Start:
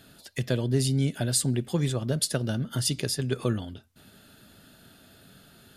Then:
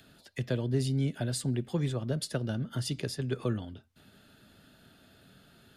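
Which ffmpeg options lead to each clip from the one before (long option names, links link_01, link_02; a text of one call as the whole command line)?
ffmpeg -i in.wav -filter_complex "[0:a]highshelf=frequency=5100:gain=-10.5,acrossover=split=320|430|1900[link_01][link_02][link_03][link_04];[link_04]acompressor=mode=upward:threshold=-56dB:ratio=2.5[link_05];[link_01][link_02][link_03][link_05]amix=inputs=4:normalize=0,volume=-4dB" out.wav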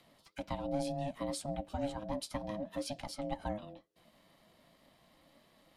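ffmpeg -i in.wav -af "flanger=delay=3.2:depth=5.5:regen=-38:speed=2:shape=sinusoidal,aeval=exprs='val(0)*sin(2*PI*420*n/s)':channel_layout=same" out.wav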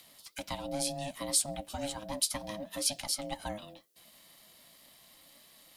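ffmpeg -i in.wav -af "crystalizer=i=8:c=0,volume=-2.5dB" out.wav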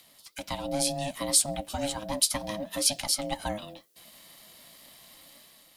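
ffmpeg -i in.wav -af "dynaudnorm=framelen=200:gausssize=5:maxgain=6dB" out.wav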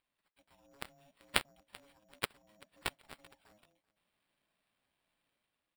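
ffmpeg -i in.wav -af "acrusher=samples=7:mix=1:aa=0.000001,aeval=exprs='0.562*(cos(1*acos(clip(val(0)/0.562,-1,1)))-cos(1*PI/2))+0.2*(cos(3*acos(clip(val(0)/0.562,-1,1)))-cos(3*PI/2))+0.00316*(cos(5*acos(clip(val(0)/0.562,-1,1)))-cos(5*PI/2))':channel_layout=same,aecho=1:1:386|772:0.0708|0.0241,volume=-2.5dB" out.wav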